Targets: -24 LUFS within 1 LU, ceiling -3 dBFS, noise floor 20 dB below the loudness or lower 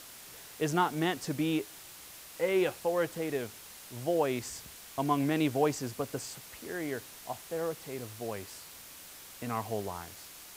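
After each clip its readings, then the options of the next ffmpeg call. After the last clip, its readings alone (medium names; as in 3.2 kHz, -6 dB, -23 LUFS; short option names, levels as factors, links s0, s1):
noise floor -50 dBFS; noise floor target -54 dBFS; loudness -33.5 LUFS; peak level -14.5 dBFS; loudness target -24.0 LUFS
-> -af "afftdn=nr=6:nf=-50"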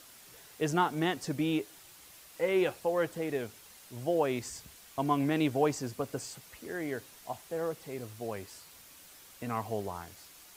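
noise floor -55 dBFS; loudness -33.5 LUFS; peak level -14.5 dBFS; loudness target -24.0 LUFS
-> -af "volume=2.99"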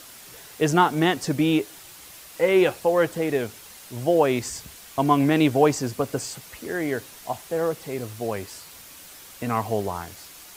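loudness -24.0 LUFS; peak level -5.0 dBFS; noise floor -45 dBFS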